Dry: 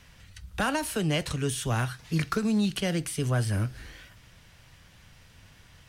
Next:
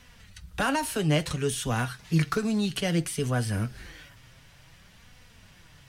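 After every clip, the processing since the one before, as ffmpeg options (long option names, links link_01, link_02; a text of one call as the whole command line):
ffmpeg -i in.wav -af "flanger=delay=4:depth=3.6:regen=49:speed=0.58:shape=sinusoidal,volume=5dB" out.wav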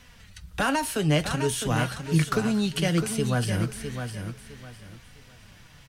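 ffmpeg -i in.wav -af "aecho=1:1:657|1314|1971:0.398|0.104|0.0269,volume=1.5dB" out.wav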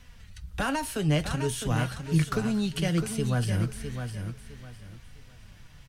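ffmpeg -i in.wav -af "lowshelf=frequency=100:gain=11,volume=-4.5dB" out.wav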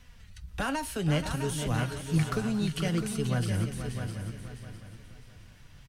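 ffmpeg -i in.wav -af "aecho=1:1:481|832:0.335|0.141,volume=-2.5dB" out.wav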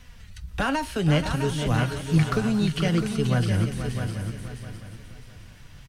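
ffmpeg -i in.wav -filter_complex "[0:a]acrossover=split=5500[link_01][link_02];[link_02]acompressor=threshold=-51dB:ratio=4:attack=1:release=60[link_03];[link_01][link_03]amix=inputs=2:normalize=0,volume=6dB" out.wav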